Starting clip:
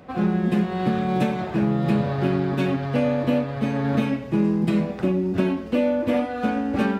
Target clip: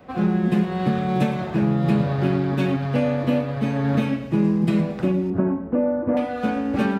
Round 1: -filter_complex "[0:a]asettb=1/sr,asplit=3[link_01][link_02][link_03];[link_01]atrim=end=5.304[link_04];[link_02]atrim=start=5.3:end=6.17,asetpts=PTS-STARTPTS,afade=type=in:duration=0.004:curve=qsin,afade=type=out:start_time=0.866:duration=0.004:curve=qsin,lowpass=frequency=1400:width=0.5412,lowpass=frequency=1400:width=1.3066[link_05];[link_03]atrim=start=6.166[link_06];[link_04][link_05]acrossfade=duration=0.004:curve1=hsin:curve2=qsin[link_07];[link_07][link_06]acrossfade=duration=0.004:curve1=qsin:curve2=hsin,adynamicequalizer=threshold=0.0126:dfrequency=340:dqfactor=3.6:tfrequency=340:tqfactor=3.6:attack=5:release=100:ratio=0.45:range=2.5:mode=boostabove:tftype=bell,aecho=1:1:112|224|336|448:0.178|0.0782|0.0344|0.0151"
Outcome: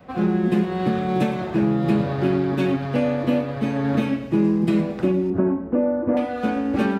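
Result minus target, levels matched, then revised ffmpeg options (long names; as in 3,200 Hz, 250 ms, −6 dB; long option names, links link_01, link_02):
125 Hz band −3.0 dB
-filter_complex "[0:a]asettb=1/sr,asplit=3[link_01][link_02][link_03];[link_01]atrim=end=5.304[link_04];[link_02]atrim=start=5.3:end=6.17,asetpts=PTS-STARTPTS,afade=type=in:duration=0.004:curve=qsin,afade=type=out:start_time=0.866:duration=0.004:curve=qsin,lowpass=frequency=1400:width=0.5412,lowpass=frequency=1400:width=1.3066[link_05];[link_03]atrim=start=6.166[link_06];[link_04][link_05]acrossfade=duration=0.004:curve1=hsin:curve2=qsin[link_07];[link_07][link_06]acrossfade=duration=0.004:curve1=qsin:curve2=hsin,adynamicequalizer=threshold=0.0126:dfrequency=150:dqfactor=3.6:tfrequency=150:tqfactor=3.6:attack=5:release=100:ratio=0.45:range=2.5:mode=boostabove:tftype=bell,aecho=1:1:112|224|336|448:0.178|0.0782|0.0344|0.0151"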